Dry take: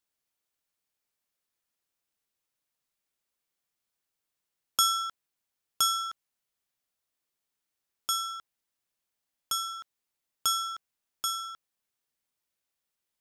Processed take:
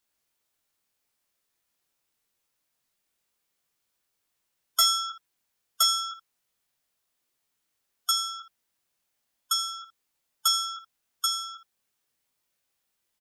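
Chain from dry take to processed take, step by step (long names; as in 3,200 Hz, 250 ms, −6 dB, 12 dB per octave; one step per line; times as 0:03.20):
gate on every frequency bin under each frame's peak −20 dB strong
ambience of single reflections 22 ms −5 dB, 79 ms −16 dB
hard clipping −19.5 dBFS, distortion −16 dB
level +5 dB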